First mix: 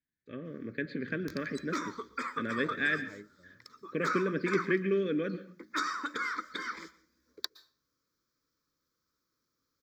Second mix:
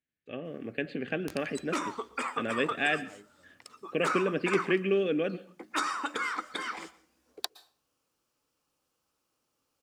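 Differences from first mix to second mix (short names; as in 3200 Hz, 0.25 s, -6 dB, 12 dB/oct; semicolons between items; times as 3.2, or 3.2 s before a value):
first voice: send -6.0 dB; second voice -8.5 dB; master: remove fixed phaser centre 2800 Hz, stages 6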